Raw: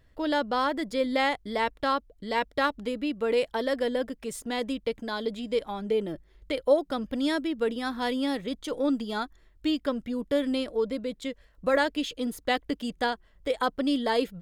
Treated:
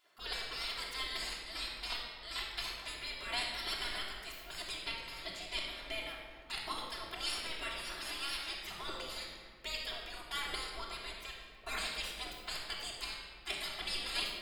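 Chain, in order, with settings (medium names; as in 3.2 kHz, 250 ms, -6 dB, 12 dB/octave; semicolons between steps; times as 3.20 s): spectral gate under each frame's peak -25 dB weak; peaking EQ 130 Hz -4 dB 1.5 oct; simulated room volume 2300 m³, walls mixed, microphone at 3.1 m; trim +1.5 dB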